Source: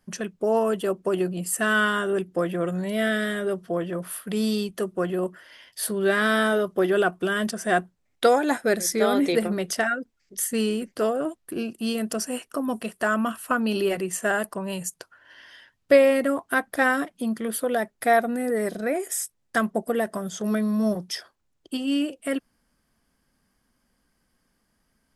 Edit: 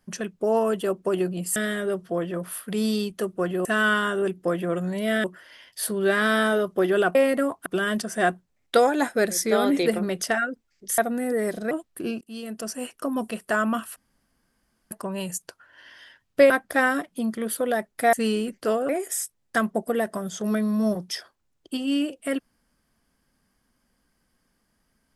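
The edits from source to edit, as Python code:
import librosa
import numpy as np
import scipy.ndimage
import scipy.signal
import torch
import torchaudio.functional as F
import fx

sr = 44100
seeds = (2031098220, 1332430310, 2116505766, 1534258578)

y = fx.edit(x, sr, fx.move(start_s=1.56, length_s=1.59, to_s=5.24),
    fx.swap(start_s=10.47, length_s=0.76, other_s=18.16, other_length_s=0.73),
    fx.fade_in_from(start_s=11.73, length_s=0.86, floor_db=-15.5),
    fx.room_tone_fill(start_s=13.48, length_s=0.95),
    fx.move(start_s=16.02, length_s=0.51, to_s=7.15), tone=tone)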